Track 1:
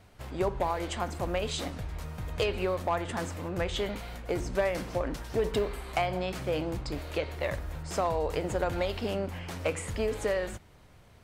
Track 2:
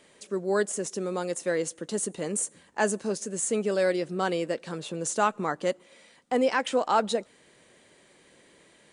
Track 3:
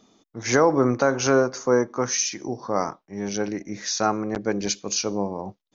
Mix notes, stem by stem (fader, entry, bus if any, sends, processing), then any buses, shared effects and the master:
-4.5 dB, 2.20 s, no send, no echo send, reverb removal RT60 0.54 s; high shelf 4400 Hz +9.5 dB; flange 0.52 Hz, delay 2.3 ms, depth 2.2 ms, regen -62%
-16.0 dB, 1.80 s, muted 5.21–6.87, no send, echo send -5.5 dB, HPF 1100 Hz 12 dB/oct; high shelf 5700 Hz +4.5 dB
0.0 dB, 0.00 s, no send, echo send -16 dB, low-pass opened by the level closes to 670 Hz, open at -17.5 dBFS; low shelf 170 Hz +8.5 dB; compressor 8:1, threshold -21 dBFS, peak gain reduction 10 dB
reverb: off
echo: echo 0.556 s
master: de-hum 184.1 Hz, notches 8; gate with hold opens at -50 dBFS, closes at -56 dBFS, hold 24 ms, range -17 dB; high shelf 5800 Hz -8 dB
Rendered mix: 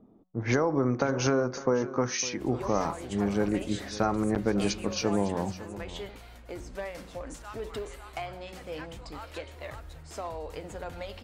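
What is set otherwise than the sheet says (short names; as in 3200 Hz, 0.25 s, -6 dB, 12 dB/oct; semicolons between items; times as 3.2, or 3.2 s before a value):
stem 1: missing reverb removal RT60 0.54 s; stem 2: entry 1.80 s -> 2.25 s; master: missing gate with hold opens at -50 dBFS, closes at -56 dBFS, hold 24 ms, range -17 dB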